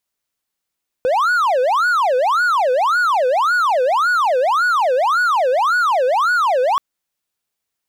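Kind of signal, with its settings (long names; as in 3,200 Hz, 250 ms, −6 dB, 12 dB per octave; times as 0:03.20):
siren wail 497–1,470 Hz 1.8 per second triangle −11 dBFS 5.73 s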